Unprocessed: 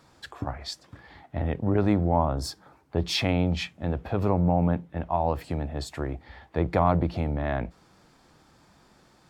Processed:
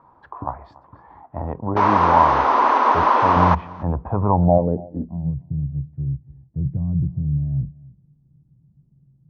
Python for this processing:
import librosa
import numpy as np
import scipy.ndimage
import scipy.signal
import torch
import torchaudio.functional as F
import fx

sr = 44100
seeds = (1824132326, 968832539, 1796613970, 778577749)

p1 = fx.bass_treble(x, sr, bass_db=8, treble_db=-6, at=(3.36, 4.58))
p2 = fx.spec_paint(p1, sr, seeds[0], shape='noise', start_s=1.76, length_s=1.79, low_hz=220.0, high_hz=6500.0, level_db=-17.0)
p3 = fx.filter_sweep_lowpass(p2, sr, from_hz=1000.0, to_hz=140.0, start_s=4.29, end_s=5.34, q=6.2)
p4 = p3 + fx.echo_single(p3, sr, ms=286, db=-22.0, dry=0)
y = p4 * librosa.db_to_amplitude(-1.0)